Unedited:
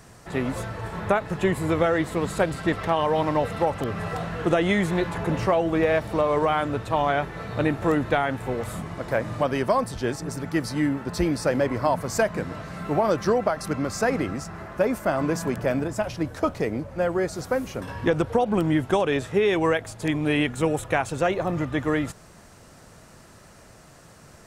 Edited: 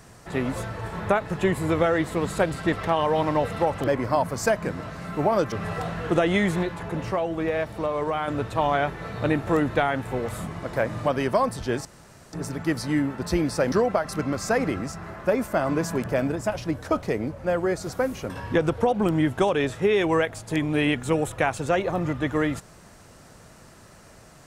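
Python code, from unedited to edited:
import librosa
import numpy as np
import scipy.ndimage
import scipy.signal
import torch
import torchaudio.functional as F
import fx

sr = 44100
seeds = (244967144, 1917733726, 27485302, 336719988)

y = fx.edit(x, sr, fx.clip_gain(start_s=4.98, length_s=1.65, db=-4.5),
    fx.insert_room_tone(at_s=10.2, length_s=0.48),
    fx.move(start_s=11.59, length_s=1.65, to_s=3.87), tone=tone)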